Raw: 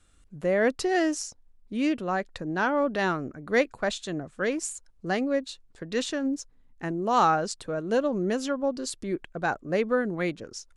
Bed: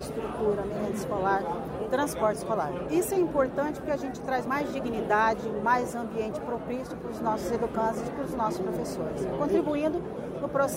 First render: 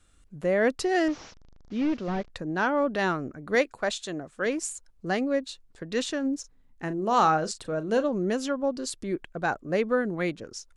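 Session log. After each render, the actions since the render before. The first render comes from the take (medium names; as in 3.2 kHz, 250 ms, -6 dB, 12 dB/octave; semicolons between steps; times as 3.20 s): 1.08–2.30 s: one-bit delta coder 32 kbps, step -45.5 dBFS; 3.55–4.46 s: tone controls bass -6 dB, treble +2 dB; 6.40–8.09 s: doubling 38 ms -13 dB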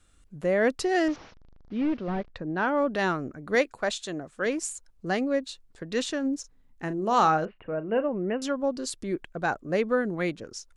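1.16–2.68 s: distance through air 190 m; 7.45–8.42 s: rippled Chebyshev low-pass 2.9 kHz, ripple 3 dB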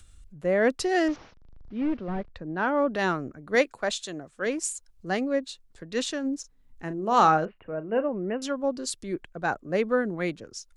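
upward compressor, threshold -38 dBFS; three bands expanded up and down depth 40%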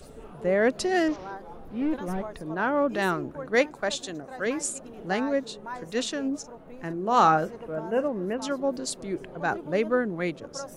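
add bed -13 dB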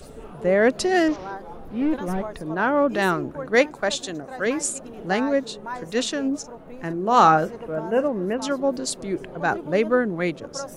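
trim +4.5 dB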